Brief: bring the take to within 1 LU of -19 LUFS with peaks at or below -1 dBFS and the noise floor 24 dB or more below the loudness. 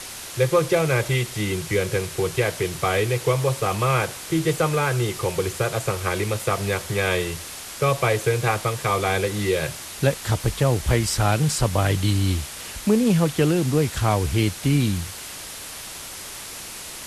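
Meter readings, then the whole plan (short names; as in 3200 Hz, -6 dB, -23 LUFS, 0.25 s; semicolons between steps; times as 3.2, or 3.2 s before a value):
noise floor -36 dBFS; noise floor target -47 dBFS; loudness -22.5 LUFS; peak -5.0 dBFS; loudness target -19.0 LUFS
-> noise print and reduce 11 dB; gain +3.5 dB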